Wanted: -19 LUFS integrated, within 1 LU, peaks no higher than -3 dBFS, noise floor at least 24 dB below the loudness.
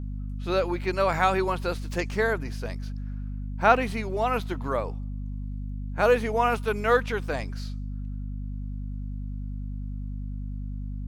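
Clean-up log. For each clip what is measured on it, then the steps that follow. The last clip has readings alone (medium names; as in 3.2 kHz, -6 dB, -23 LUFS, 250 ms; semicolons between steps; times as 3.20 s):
hum 50 Hz; highest harmonic 250 Hz; hum level -30 dBFS; loudness -28.0 LUFS; peak level -5.5 dBFS; loudness target -19.0 LUFS
-> de-hum 50 Hz, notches 5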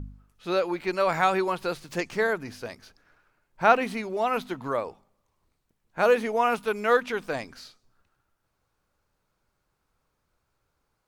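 hum not found; loudness -26.0 LUFS; peak level -6.0 dBFS; loudness target -19.0 LUFS
-> trim +7 dB; peak limiter -3 dBFS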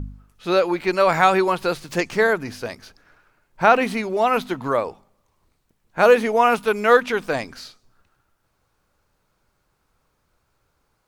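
loudness -19.5 LUFS; peak level -3.0 dBFS; noise floor -70 dBFS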